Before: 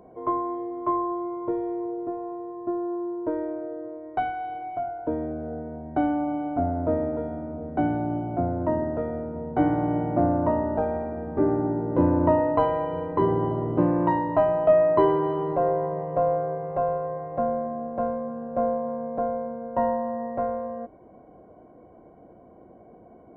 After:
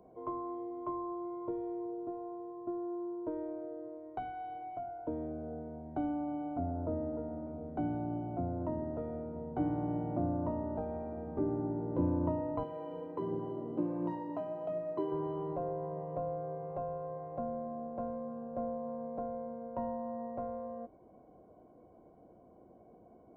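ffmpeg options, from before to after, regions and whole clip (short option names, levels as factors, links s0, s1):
-filter_complex "[0:a]asettb=1/sr,asplit=3[s0][s1][s2];[s0]atrim=end=6.714[s3];[s1]atrim=start=6.71:end=7.47,asetpts=PTS-STARTPTS,afade=t=in:d=0.004:c=qsin,afade=t=out:st=0.756:d=0.004:c=qsin,lowpass=f=1800:w=0.5412,lowpass=f=1800:w=1.3066,asplit=2[s4][s5];[s5]adelay=48,volume=0.224[s6];[s4][s6]amix=inputs=2:normalize=0,atrim=end_sample=33516[s7];[s2]atrim=start=7.466[s8];[s3][s7]acrossfade=d=0.004:c1=hsin:c2=qsin[s9];[s9][s8]acrossfade=d=0.004:c1=qsin:c2=hsin,asettb=1/sr,asplit=3[s10][s11][s12];[s10]atrim=end=12.634[s13];[s11]atrim=start=12.63:end=15.12,asetpts=PTS-STARTPTS,afade=t=in:d=0.004:c=qsin,afade=t=out:st=2.486:d=0.004:c=qsin,highpass=210,equalizer=f=1000:w=0.64:g=-6.5,aphaser=in_gain=1:out_gain=1:delay=4.6:decay=0.29:speed=1.4:type=triangular[s14];[s12]atrim=start=15.116[s15];[s13][s14]acrossfade=d=0.004:c1=hsin:c2=qsin[s16];[s16][s15]acrossfade=d=0.004:c1=qsin:c2=hsin,equalizer=f=1800:t=o:w=0.62:g=-7.5,acrossover=split=320[s17][s18];[s18]acompressor=threshold=0.0282:ratio=2.5[s19];[s17][s19]amix=inputs=2:normalize=0,volume=0.376"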